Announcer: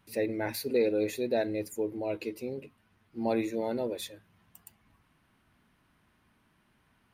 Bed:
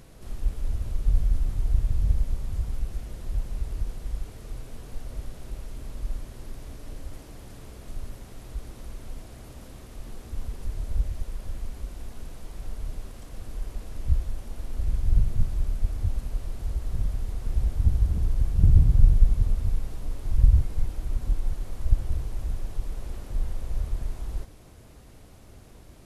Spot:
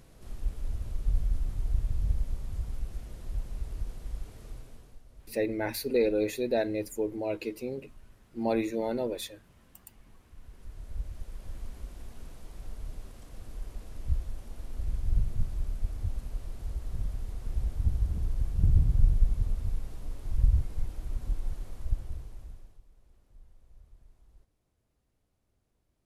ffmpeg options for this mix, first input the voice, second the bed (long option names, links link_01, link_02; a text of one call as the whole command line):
ffmpeg -i stem1.wav -i stem2.wav -filter_complex "[0:a]adelay=5200,volume=1dB[link_01];[1:a]volume=6.5dB,afade=type=out:start_time=4.46:duration=0.55:silence=0.237137,afade=type=in:start_time=10.38:duration=1.24:silence=0.251189,afade=type=out:start_time=21.59:duration=1.23:silence=0.0891251[link_02];[link_01][link_02]amix=inputs=2:normalize=0" out.wav